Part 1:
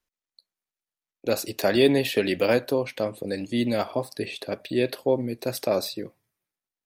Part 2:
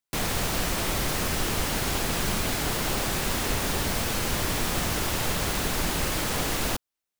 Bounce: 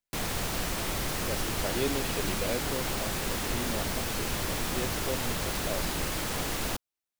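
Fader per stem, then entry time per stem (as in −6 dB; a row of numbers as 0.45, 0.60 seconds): −12.5, −4.5 decibels; 0.00, 0.00 seconds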